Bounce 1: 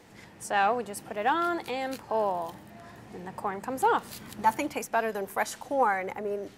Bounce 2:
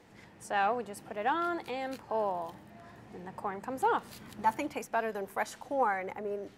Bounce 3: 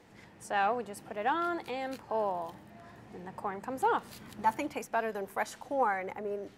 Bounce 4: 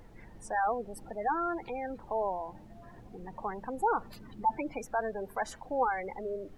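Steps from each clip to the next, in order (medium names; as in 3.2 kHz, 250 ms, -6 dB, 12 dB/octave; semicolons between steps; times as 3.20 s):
treble shelf 4.8 kHz -6 dB; trim -4 dB
no audible change
spectral gate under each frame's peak -15 dB strong; added noise brown -52 dBFS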